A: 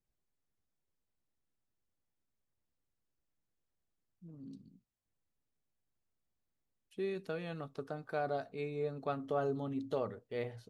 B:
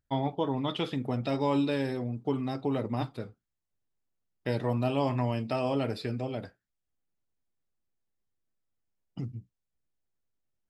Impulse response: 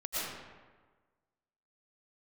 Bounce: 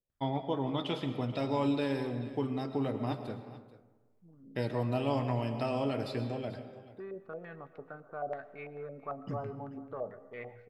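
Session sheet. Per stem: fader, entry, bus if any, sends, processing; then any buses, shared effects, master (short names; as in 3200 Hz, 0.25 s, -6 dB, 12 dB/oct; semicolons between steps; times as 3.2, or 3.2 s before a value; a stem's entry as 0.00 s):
-7.5 dB, 0.00 s, send -20 dB, echo send -19 dB, soft clip -26.5 dBFS, distortion -20 dB; stepped low-pass 9 Hz 550–2200 Hz
-4.5 dB, 0.10 s, send -12.5 dB, echo send -16 dB, dry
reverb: on, RT60 1.4 s, pre-delay 75 ms
echo: echo 0.437 s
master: dry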